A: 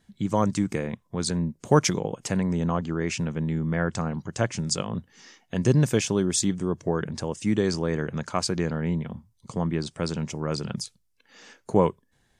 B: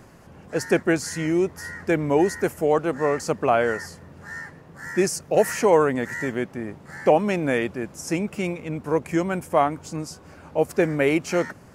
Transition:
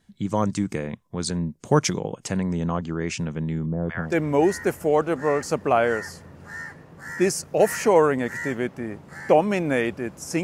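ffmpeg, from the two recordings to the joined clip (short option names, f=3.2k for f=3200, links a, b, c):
-filter_complex "[0:a]asettb=1/sr,asplit=3[a][b][c];[a]atrim=end=3.664[d];[b]atrim=start=3.66:end=4.18,asetpts=PTS-STARTPTS,afade=t=in:d=0.004:c=qsin,afade=t=out:st=0.516:d=0.004:c=qsin,acrossover=split=840[e][f];[f]adelay=170[g];[e][g]amix=inputs=2:normalize=0,atrim=end_sample=22932[h];[c]atrim=start=4.176[i];[d][h]acrossfade=d=0.004:c1=hsin:c2=qsin[j];[j][i]acrossfade=d=0.004:c1=qsin:c2=hsin,apad=whole_dur=10.43,atrim=end=10.43,atrim=end=4.18,asetpts=PTS-STARTPTS[k];[1:a]atrim=start=1.77:end=8.2,asetpts=PTS-STARTPTS[l];[k][l]acrossfade=d=0.18:c1=tri:c2=tri"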